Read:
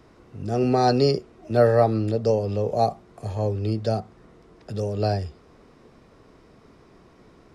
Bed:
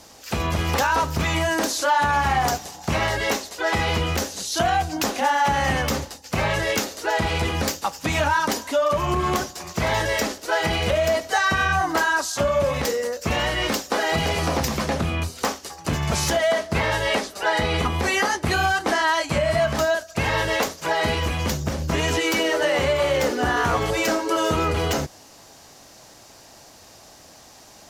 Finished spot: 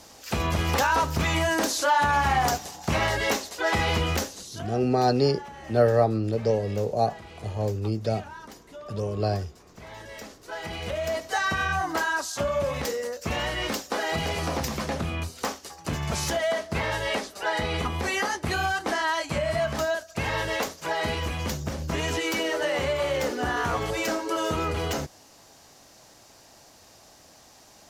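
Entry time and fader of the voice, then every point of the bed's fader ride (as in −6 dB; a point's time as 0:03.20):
4.20 s, −2.5 dB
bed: 0:04.17 −2 dB
0:04.75 −22 dB
0:09.82 −22 dB
0:11.30 −5.5 dB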